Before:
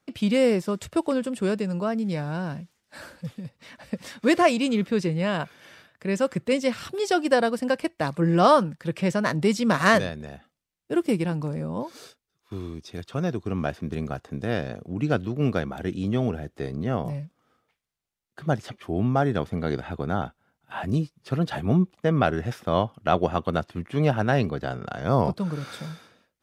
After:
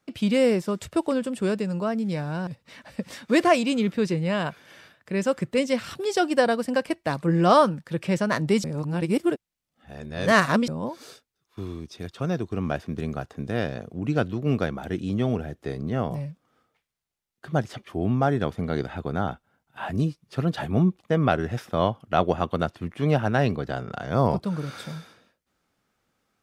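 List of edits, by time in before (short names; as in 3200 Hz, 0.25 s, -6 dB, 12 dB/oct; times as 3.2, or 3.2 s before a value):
2.47–3.41 cut
9.58–11.62 reverse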